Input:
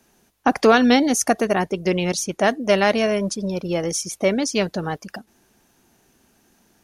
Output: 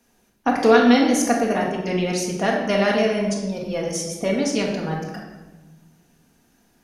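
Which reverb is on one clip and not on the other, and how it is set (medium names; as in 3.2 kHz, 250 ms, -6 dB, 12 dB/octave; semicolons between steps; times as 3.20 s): simulated room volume 760 m³, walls mixed, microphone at 1.8 m; trim -5.5 dB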